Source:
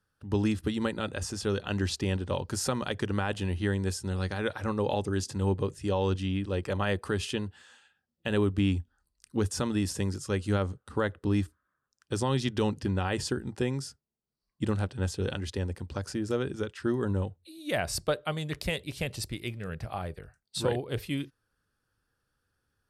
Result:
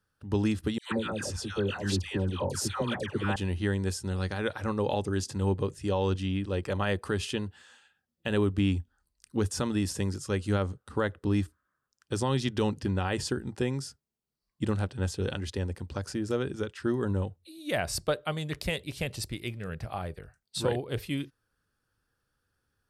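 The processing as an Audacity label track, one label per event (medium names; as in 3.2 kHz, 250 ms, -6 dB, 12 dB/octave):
0.780000	3.360000	phase dispersion lows, late by 135 ms, half as late at 1.1 kHz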